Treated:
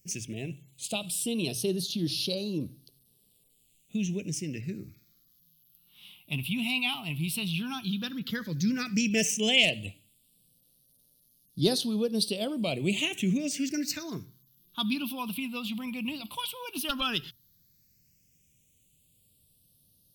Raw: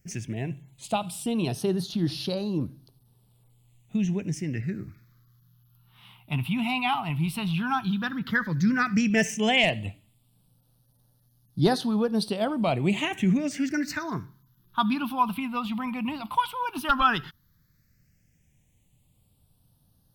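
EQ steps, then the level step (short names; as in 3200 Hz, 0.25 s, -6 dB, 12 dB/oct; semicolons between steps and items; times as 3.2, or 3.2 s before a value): tilt +2 dB/oct; band shelf 1200 Hz -14.5 dB; notches 60/120 Hz; 0.0 dB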